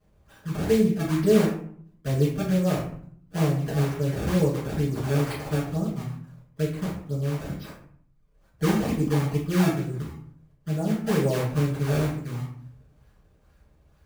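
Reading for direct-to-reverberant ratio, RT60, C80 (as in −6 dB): −9.5 dB, 0.60 s, 8.5 dB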